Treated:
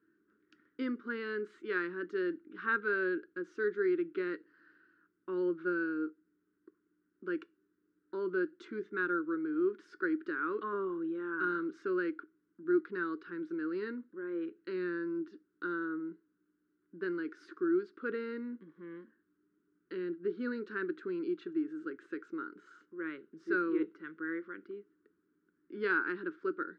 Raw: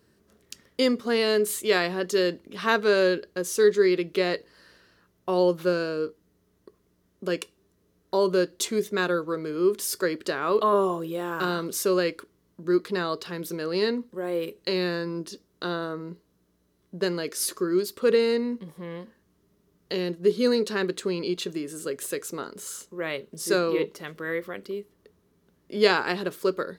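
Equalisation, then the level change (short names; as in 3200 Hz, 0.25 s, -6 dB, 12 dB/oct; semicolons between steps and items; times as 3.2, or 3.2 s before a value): double band-pass 680 Hz, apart 2.2 oct; air absorption 150 m; +1.0 dB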